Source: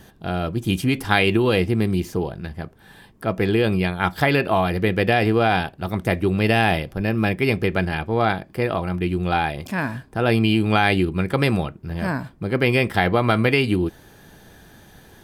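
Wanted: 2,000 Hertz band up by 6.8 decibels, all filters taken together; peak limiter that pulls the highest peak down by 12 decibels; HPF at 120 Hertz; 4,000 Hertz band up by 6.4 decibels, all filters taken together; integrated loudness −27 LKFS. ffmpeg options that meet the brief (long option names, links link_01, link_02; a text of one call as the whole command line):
ffmpeg -i in.wav -af "highpass=120,equalizer=frequency=2000:width_type=o:gain=7,equalizer=frequency=4000:width_type=o:gain=5.5,volume=-5.5dB,alimiter=limit=-13dB:level=0:latency=1" out.wav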